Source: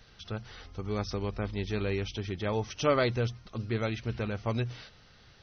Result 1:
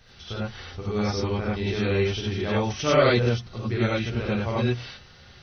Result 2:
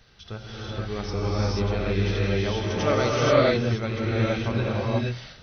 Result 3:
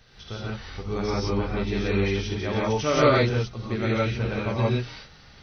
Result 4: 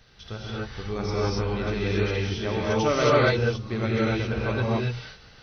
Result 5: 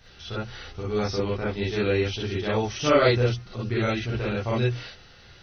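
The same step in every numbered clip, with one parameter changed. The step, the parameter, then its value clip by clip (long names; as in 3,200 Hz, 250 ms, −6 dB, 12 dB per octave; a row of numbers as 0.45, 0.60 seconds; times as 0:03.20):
reverb whose tail is shaped and stops, gate: 120, 510, 200, 300, 80 milliseconds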